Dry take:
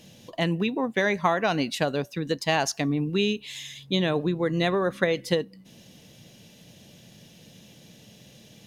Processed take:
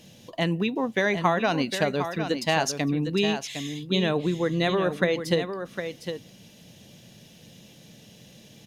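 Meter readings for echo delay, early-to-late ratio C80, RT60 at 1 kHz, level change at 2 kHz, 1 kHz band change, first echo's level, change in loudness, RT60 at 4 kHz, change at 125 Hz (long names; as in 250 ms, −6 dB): 757 ms, no reverb audible, no reverb audible, +0.5 dB, +0.5 dB, −8.5 dB, 0.0 dB, no reverb audible, +0.5 dB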